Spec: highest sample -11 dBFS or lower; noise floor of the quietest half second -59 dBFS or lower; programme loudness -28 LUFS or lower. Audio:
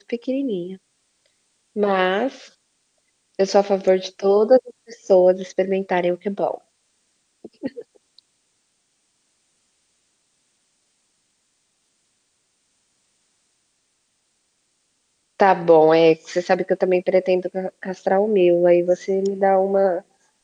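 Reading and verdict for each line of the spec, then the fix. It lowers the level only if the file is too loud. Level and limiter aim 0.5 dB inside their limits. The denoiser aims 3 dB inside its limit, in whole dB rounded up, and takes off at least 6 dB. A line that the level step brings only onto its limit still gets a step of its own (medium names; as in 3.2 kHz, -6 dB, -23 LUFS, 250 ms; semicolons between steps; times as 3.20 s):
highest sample -3.0 dBFS: fail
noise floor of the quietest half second -69 dBFS: pass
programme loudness -19.0 LUFS: fail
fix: trim -9.5 dB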